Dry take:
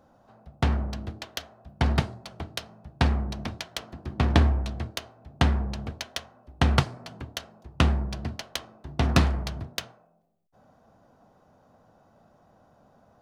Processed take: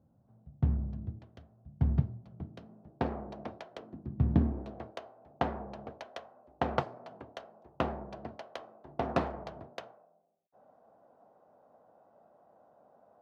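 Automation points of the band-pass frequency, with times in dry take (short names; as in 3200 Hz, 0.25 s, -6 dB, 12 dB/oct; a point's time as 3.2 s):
band-pass, Q 1.3
2.26 s 120 Hz
3.15 s 550 Hz
3.68 s 550 Hz
4.22 s 120 Hz
4.81 s 610 Hz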